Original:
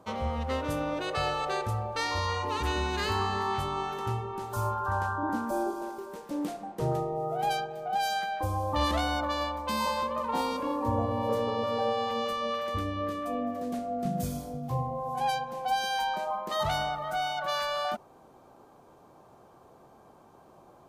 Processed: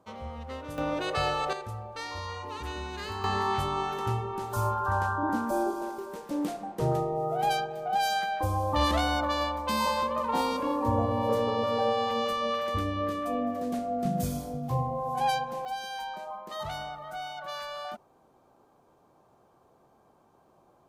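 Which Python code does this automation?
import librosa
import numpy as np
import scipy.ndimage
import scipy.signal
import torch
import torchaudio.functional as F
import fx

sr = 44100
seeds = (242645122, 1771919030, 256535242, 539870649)

y = fx.gain(x, sr, db=fx.steps((0.0, -8.0), (0.78, 1.5), (1.53, -7.0), (3.24, 2.0), (15.65, -7.0)))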